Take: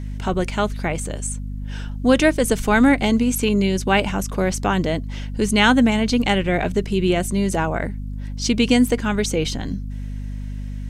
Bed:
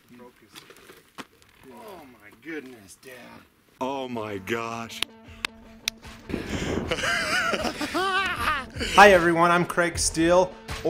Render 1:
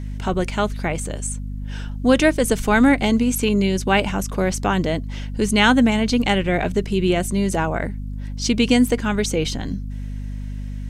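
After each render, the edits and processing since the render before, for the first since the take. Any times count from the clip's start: no audible change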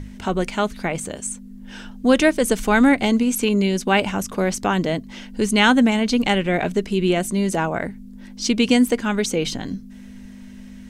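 hum notches 50/100/150 Hz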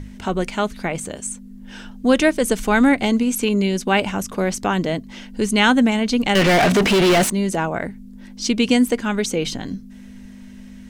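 6.35–7.30 s: overdrive pedal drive 37 dB, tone 3.9 kHz, clips at -8.5 dBFS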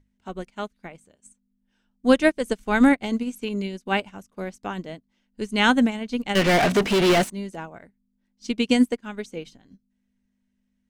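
upward expansion 2.5:1, over -34 dBFS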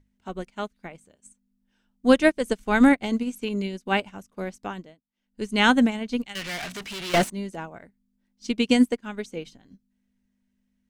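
4.61–5.47 s: dip -21.5 dB, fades 0.34 s linear; 6.25–7.14 s: amplifier tone stack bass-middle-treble 5-5-5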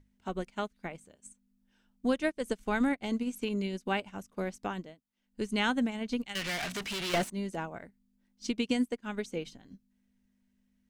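compression 2.5:1, threshold -31 dBFS, peak gain reduction 13.5 dB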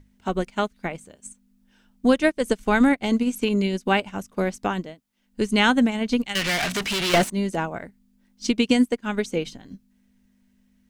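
trim +10.5 dB

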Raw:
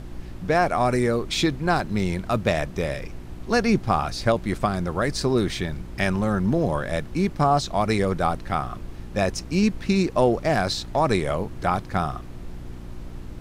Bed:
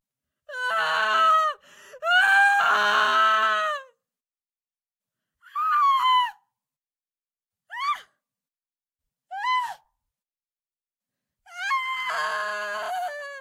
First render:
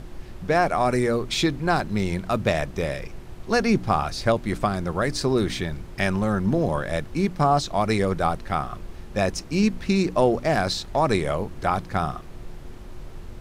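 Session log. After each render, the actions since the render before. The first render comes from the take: de-hum 60 Hz, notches 5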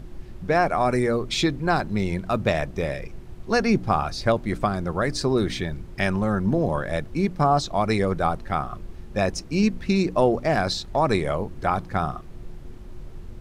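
noise reduction 6 dB, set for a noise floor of -40 dBFS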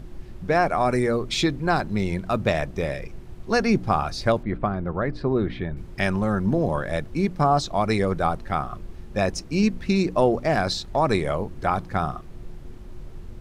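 4.43–5.77 s: distance through air 470 m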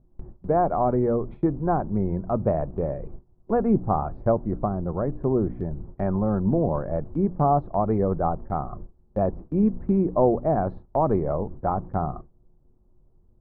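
low-pass 1 kHz 24 dB/octave; gate with hold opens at -26 dBFS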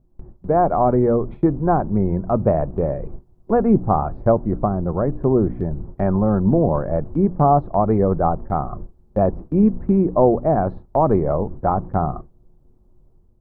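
level rider gain up to 6 dB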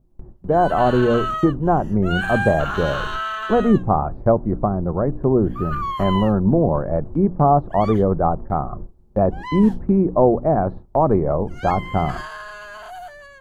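add bed -6.5 dB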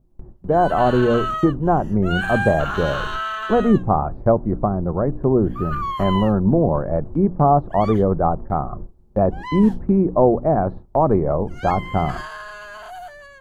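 no audible change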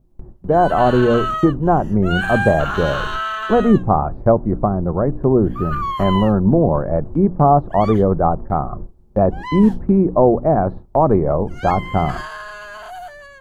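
trim +2.5 dB; peak limiter -2 dBFS, peak gain reduction 1 dB

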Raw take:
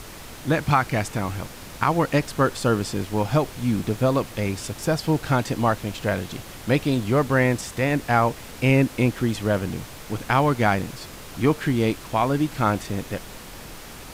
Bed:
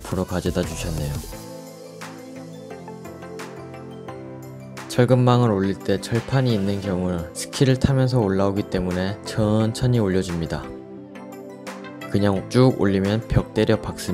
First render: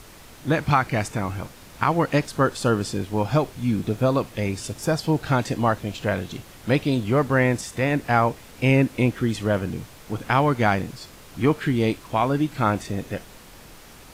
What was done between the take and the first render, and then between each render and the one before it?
noise print and reduce 6 dB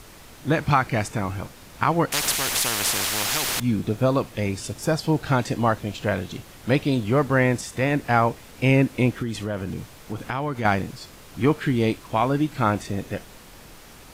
2.12–3.60 s: spectrum-flattening compressor 10:1; 9.22–10.65 s: compression 3:1, threshold -25 dBFS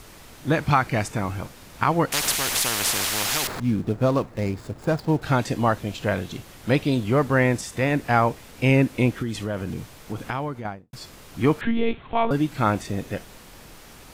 3.47–5.22 s: median filter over 15 samples; 10.27–10.93 s: studio fade out; 11.61–12.31 s: monotone LPC vocoder at 8 kHz 230 Hz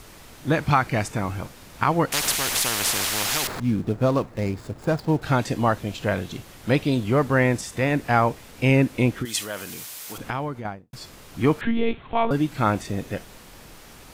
9.25–10.18 s: tilt EQ +4.5 dB/octave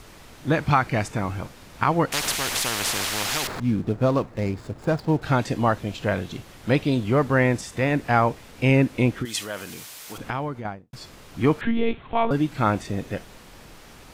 treble shelf 8.3 kHz -7 dB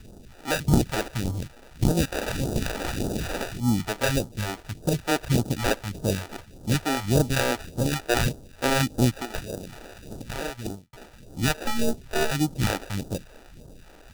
sample-and-hold 41×; phase shifter stages 2, 1.7 Hz, lowest notch 110–2100 Hz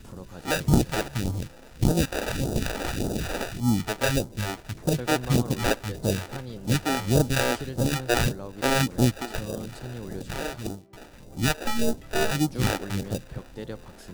add bed -18.5 dB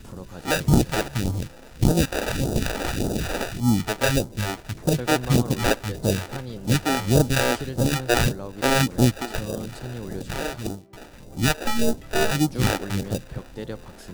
trim +3 dB; peak limiter -3 dBFS, peak gain reduction 1.5 dB

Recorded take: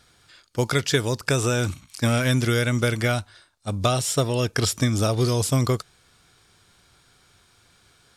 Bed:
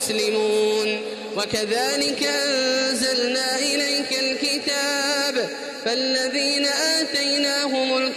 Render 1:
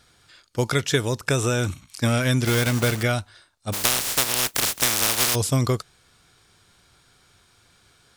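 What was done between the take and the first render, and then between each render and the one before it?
0.72–1.81 s: band-stop 4.7 kHz, Q 7.4; 2.45–3.04 s: block-companded coder 3-bit; 3.72–5.34 s: spectral contrast reduction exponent 0.14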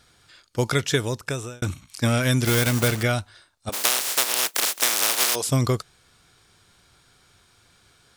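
0.71–1.62 s: fade out equal-power; 2.23–2.88 s: treble shelf 8.5 kHz +5.5 dB; 3.69–5.47 s: high-pass 380 Hz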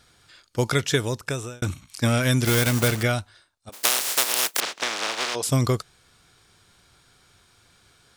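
3.06–3.83 s: fade out, to -19.5 dB; 4.60–5.43 s: distance through air 130 m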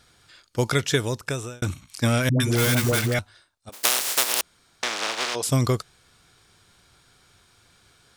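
2.29–3.19 s: phase dispersion highs, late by 111 ms, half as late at 480 Hz; 4.41–4.83 s: room tone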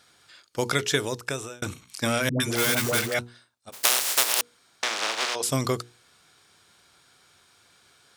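high-pass 260 Hz 6 dB/octave; hum notches 60/120/180/240/300/360/420/480 Hz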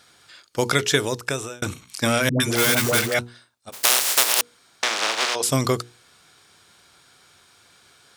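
trim +4.5 dB; peak limiter -1 dBFS, peak gain reduction 2.5 dB

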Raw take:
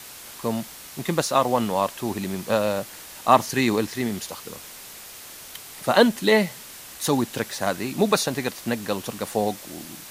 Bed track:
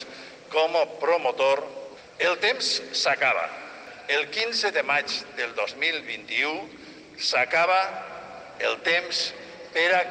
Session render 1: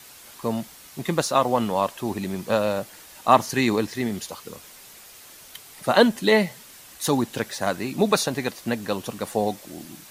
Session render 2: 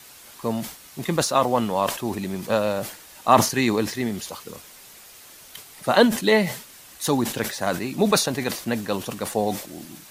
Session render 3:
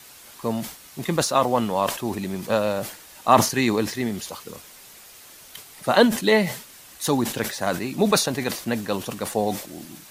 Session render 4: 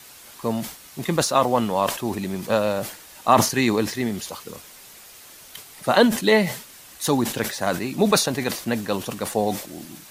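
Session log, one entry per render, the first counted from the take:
noise reduction 6 dB, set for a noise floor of -42 dBFS
decay stretcher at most 110 dB/s
no audible change
trim +1 dB; peak limiter -3 dBFS, peak gain reduction 2.5 dB

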